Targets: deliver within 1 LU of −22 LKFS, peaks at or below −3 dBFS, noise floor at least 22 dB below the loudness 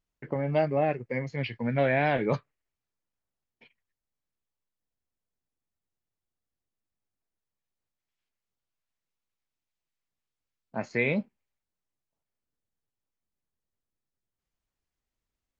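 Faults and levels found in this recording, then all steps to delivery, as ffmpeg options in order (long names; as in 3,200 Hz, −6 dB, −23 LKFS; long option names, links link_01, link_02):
integrated loudness −28.5 LKFS; sample peak −13.5 dBFS; target loudness −22.0 LKFS
→ -af "volume=6.5dB"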